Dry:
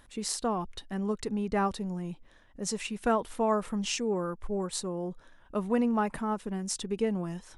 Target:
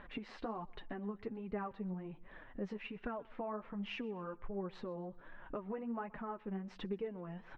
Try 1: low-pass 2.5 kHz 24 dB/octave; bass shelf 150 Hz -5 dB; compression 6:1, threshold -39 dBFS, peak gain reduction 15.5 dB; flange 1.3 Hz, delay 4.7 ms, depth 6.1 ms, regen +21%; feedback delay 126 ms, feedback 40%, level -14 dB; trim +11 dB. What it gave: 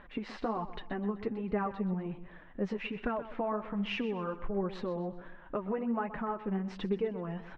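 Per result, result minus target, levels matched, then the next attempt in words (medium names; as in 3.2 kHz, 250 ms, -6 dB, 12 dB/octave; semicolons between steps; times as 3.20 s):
compression: peak gain reduction -8 dB; echo-to-direct +10 dB
low-pass 2.5 kHz 24 dB/octave; bass shelf 150 Hz -5 dB; compression 6:1, threshold -48.5 dBFS, peak gain reduction 23.5 dB; flange 1.3 Hz, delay 4.7 ms, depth 6.1 ms, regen +21%; feedback delay 126 ms, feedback 40%, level -14 dB; trim +11 dB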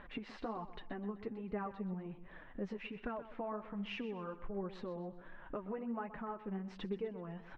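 echo-to-direct +10 dB
low-pass 2.5 kHz 24 dB/octave; bass shelf 150 Hz -5 dB; compression 6:1, threshold -48.5 dBFS, peak gain reduction 23.5 dB; flange 1.3 Hz, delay 4.7 ms, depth 6.1 ms, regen +21%; feedback delay 126 ms, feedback 40%, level -24 dB; trim +11 dB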